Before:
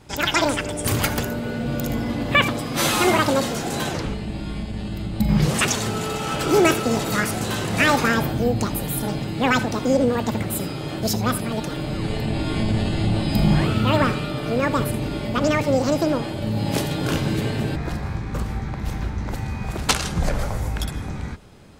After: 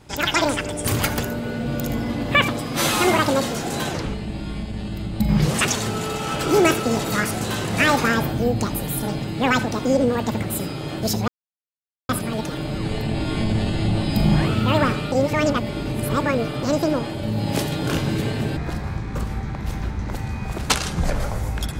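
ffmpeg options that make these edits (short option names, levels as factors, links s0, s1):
-filter_complex "[0:a]asplit=4[s0][s1][s2][s3];[s0]atrim=end=11.28,asetpts=PTS-STARTPTS,afade=t=out:st=11.276:d=0.004:c=hsin,apad=pad_dur=0.81[s4];[s1]atrim=start=11.28:end=14.312,asetpts=PTS-STARTPTS,afade=t=in:d=0.004:c=hsin[s5];[s2]atrim=start=14.308:end=15.822,asetpts=PTS-STARTPTS,areverse[s6];[s3]atrim=start=15.818[s7];[s4][s5]concat=n=2:v=0:a=1[s8];[s8][s6]acrossfade=d=0.004:c1=hsin:c2=hsin[s9];[s9][s7]acrossfade=d=0.004:c1=hsin:c2=hsin"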